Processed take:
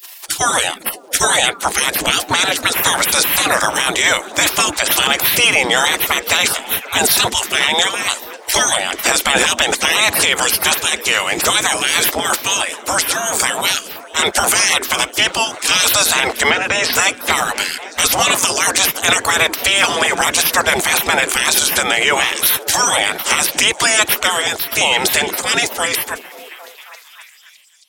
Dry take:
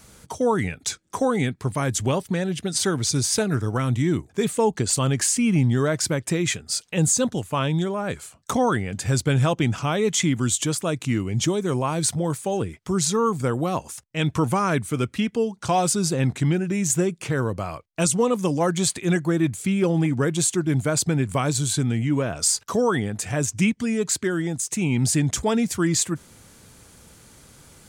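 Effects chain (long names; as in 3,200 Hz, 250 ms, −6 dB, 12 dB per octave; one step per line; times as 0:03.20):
fade-out on the ending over 3.94 s
gate on every frequency bin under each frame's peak −25 dB weak
low-shelf EQ 83 Hz −6.5 dB
0:12.54–0:13.37: downward compressor, threshold −42 dBFS, peak gain reduction 8.5 dB
0:16.50–0:16.93: high-frequency loss of the air 120 metres
on a send: echo through a band-pass that steps 269 ms, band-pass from 270 Hz, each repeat 0.7 octaves, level −9.5 dB
on the sum: boost into a limiter +30 dB
level −1 dB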